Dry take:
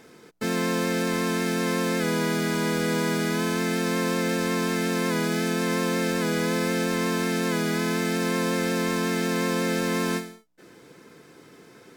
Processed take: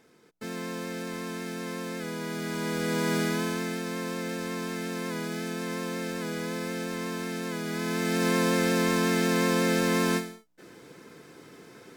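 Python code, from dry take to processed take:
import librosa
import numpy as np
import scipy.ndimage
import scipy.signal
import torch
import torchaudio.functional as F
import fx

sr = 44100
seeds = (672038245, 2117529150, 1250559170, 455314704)

y = fx.gain(x, sr, db=fx.line((2.18, -10.0), (3.18, -1.0), (3.84, -8.0), (7.62, -8.0), (8.27, 0.5)))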